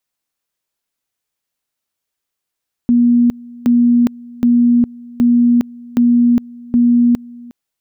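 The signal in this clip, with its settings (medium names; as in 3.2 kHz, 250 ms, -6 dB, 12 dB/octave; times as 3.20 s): two-level tone 240 Hz -7.5 dBFS, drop 23.5 dB, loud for 0.41 s, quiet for 0.36 s, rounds 6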